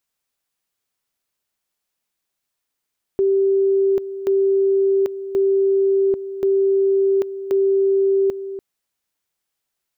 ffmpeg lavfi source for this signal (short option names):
-f lavfi -i "aevalsrc='pow(10,(-13.5-12.5*gte(mod(t,1.08),0.79))/20)*sin(2*PI*390*t)':d=5.4:s=44100"